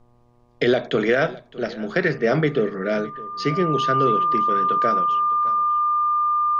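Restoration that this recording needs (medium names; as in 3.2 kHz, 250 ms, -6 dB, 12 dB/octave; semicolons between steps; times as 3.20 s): de-hum 120.6 Hz, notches 10; band-stop 1.2 kHz, Q 30; expander -44 dBFS, range -21 dB; inverse comb 611 ms -20 dB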